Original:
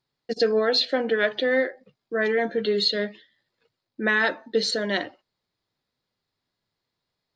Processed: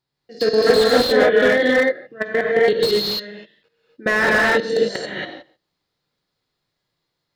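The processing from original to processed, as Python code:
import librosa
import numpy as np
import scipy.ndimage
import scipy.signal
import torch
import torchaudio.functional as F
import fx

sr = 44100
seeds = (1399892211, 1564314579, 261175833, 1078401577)

y = fx.spec_trails(x, sr, decay_s=0.38)
y = fx.tilt_eq(y, sr, slope=-2.0, at=(0.98, 1.5))
y = fx.level_steps(y, sr, step_db=22)
y = fx.rev_gated(y, sr, seeds[0], gate_ms=300, shape='rising', drr_db=-4.0)
y = fx.slew_limit(y, sr, full_power_hz=160.0)
y = F.gain(torch.from_numpy(y), 5.5).numpy()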